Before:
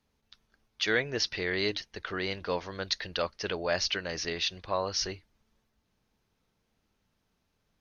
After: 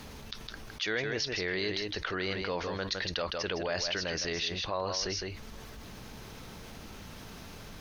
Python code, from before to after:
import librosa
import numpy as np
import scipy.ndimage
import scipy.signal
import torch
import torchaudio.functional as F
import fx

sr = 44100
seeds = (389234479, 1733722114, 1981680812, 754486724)

y = x + 10.0 ** (-9.5 / 20.0) * np.pad(x, (int(160 * sr / 1000.0), 0))[:len(x)]
y = fx.env_flatten(y, sr, amount_pct=70)
y = y * librosa.db_to_amplitude(-6.5)